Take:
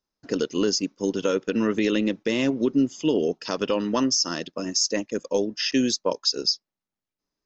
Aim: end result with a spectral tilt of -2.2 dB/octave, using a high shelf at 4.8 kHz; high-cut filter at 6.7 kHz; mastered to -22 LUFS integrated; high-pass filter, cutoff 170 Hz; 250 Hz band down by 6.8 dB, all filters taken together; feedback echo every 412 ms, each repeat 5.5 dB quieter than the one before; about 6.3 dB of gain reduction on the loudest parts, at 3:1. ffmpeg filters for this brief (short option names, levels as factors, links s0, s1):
-af "highpass=170,lowpass=6700,equalizer=f=250:t=o:g=-7.5,highshelf=f=4800:g=3.5,acompressor=threshold=0.0501:ratio=3,aecho=1:1:412|824|1236|1648|2060|2472|2884:0.531|0.281|0.149|0.079|0.0419|0.0222|0.0118,volume=2.24"